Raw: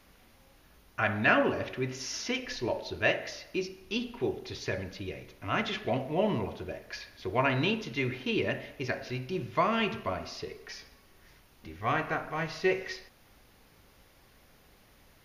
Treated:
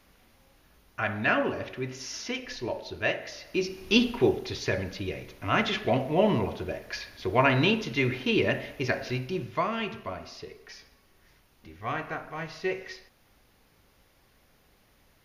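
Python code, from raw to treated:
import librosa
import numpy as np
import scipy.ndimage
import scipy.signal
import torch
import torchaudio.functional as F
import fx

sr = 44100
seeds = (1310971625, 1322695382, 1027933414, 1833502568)

y = fx.gain(x, sr, db=fx.line((3.29, -1.0), (3.98, 11.5), (4.56, 5.0), (9.13, 5.0), (9.75, -3.0)))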